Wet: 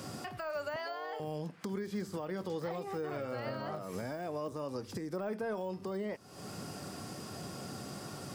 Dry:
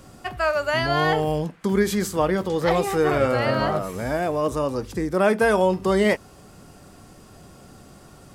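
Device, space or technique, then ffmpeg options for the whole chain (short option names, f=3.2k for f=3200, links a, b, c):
broadcast voice chain: -filter_complex "[0:a]highpass=f=100:w=0.5412,highpass=f=100:w=1.3066,deesser=1,acompressor=threshold=-38dB:ratio=4,equalizer=f=5k:t=o:w=0.33:g=6,alimiter=level_in=8dB:limit=-24dB:level=0:latency=1:release=263,volume=-8dB,asettb=1/sr,asplit=3[a][b][c];[a]atrim=end=0.764[d];[b]atrim=start=0.76:end=1.2,asetpts=PTS-STARTPTS,afade=t=in:d=0.004:c=qsin,afade=t=out:st=0.436:d=0.004:c=qsin,highpass=f=430:w=0.5412,highpass=f=430:w=1.3066[e];[c]atrim=start=1.196[f];[d][e]acrossfade=d=0.004:c1=hsin:c2=qsin[g];[g][f]acrossfade=d=0.004:c1=qsin:c2=hsin,volume=3.5dB"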